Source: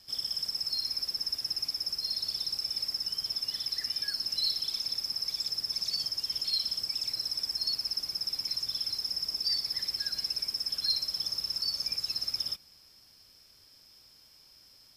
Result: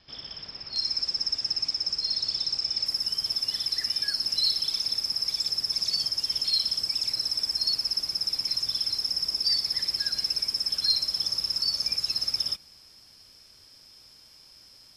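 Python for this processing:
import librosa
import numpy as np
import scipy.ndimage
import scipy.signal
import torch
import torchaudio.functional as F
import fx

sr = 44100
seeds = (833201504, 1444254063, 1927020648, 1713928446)

y = fx.lowpass(x, sr, hz=fx.steps((0.0, 3800.0), (0.76, 7200.0), (2.86, 12000.0)), slope=24)
y = y * librosa.db_to_amplitude(5.0)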